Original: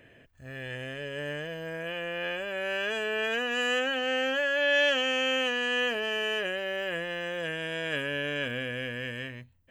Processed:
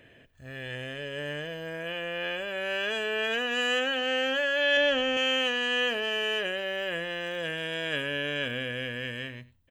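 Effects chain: 4.77–5.17 tilt -2.5 dB/oct; 7.23–7.85 crackle 93/s -42 dBFS; bell 3600 Hz +5.5 dB 0.49 oct; echo 95 ms -20.5 dB

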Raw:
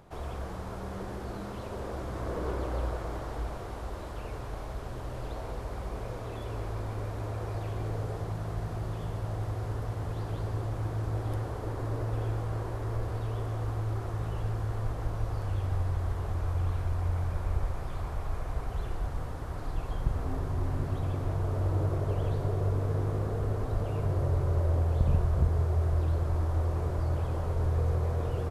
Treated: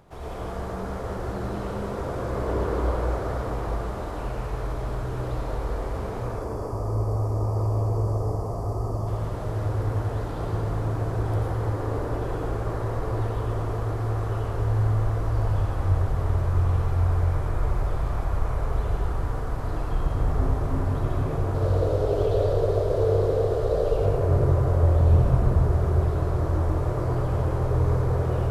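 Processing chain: 6.24–9.07 spectral gain 1300–4400 Hz -15 dB; 21.54–23.97 graphic EQ 125/250/500/1000/2000/4000 Hz -5/-12/+12/-5/-3/+8 dB; reverb RT60 2.8 s, pre-delay 78 ms, DRR -5.5 dB

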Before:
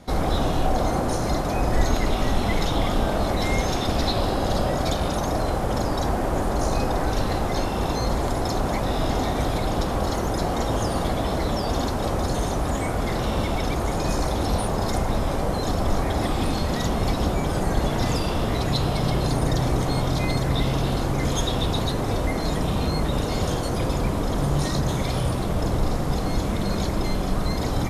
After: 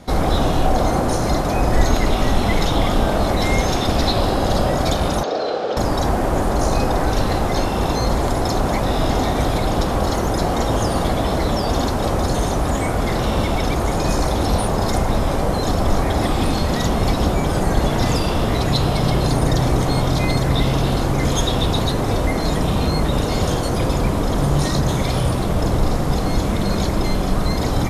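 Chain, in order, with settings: 5.23–5.77 speaker cabinet 420–5000 Hz, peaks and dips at 460 Hz +8 dB, 990 Hz -9 dB, 2000 Hz -7 dB, 4100 Hz +4 dB; gain +5 dB

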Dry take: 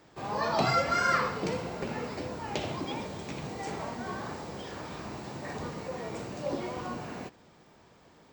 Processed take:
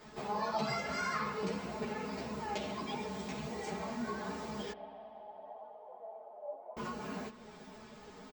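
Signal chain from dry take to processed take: comb 4.7 ms, depth 82%; compressor 2:1, threshold -48 dBFS, peak gain reduction 15.5 dB; 4.72–6.77 Butterworth band-pass 700 Hz, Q 2.8; spring tank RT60 3.1 s, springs 54 ms, chirp 75 ms, DRR 13.5 dB; ensemble effect; gain +6.5 dB

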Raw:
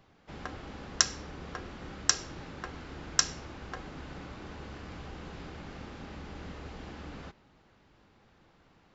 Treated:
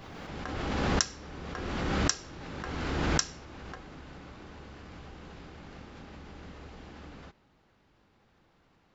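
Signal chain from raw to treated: backwards sustainer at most 23 dB/s; gain -4 dB

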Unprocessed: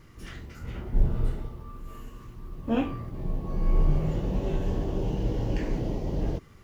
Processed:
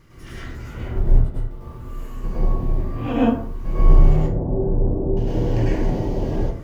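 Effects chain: 0.88–1.51 gate -21 dBFS, range -15 dB; 2.24–3.65 reverse; 4.16–5.17 Gaussian blur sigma 9.7 samples; plate-style reverb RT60 0.55 s, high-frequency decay 0.5×, pre-delay 90 ms, DRR -7 dB

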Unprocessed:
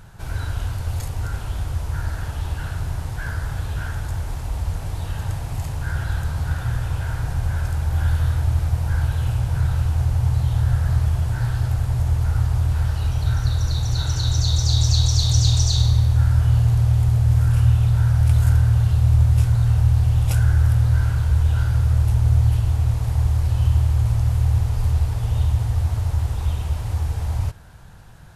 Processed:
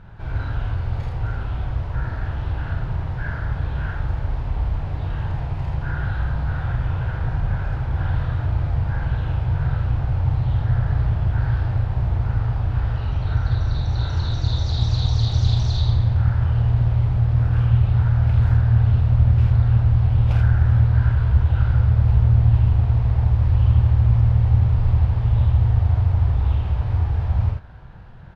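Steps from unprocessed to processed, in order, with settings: air absorption 330 m; early reflections 30 ms -8 dB, 46 ms -4 dB, 80 ms -4 dB; Doppler distortion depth 0.27 ms

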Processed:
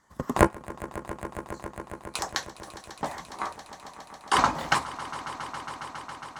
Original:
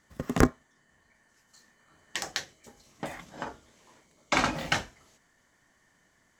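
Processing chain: trilling pitch shifter +5 st, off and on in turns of 0.365 s; high shelf 11000 Hz -3 dB; harmonic-percussive split percussive +6 dB; fifteen-band EQ 1000 Hz +11 dB, 2500 Hz -5 dB, 10000 Hz +3 dB; on a send: swelling echo 0.137 s, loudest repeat 5, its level -18 dB; on the sum: gain -4 dB

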